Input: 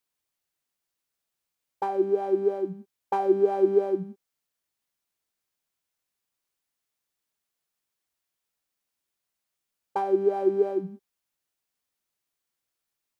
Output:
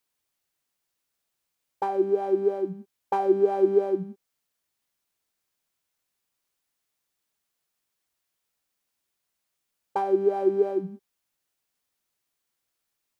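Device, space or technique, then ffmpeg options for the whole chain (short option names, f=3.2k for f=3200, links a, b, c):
parallel compression: -filter_complex "[0:a]asplit=2[a][b];[b]acompressor=threshold=-38dB:ratio=6,volume=-7dB[c];[a][c]amix=inputs=2:normalize=0"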